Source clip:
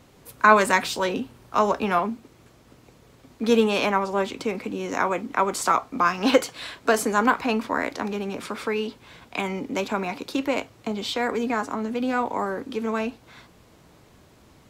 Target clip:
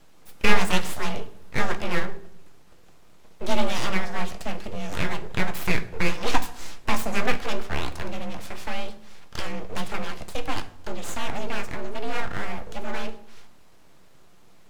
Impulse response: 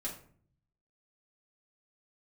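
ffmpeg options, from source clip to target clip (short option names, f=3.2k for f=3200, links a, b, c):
-filter_complex "[0:a]afreqshift=-31,aeval=exprs='abs(val(0))':c=same,asplit=2[a][b];[1:a]atrim=start_sample=2205,asetrate=28665,aresample=44100[c];[b][c]afir=irnorm=-1:irlink=0,volume=-10dB[d];[a][d]amix=inputs=2:normalize=0,volume=-3.5dB"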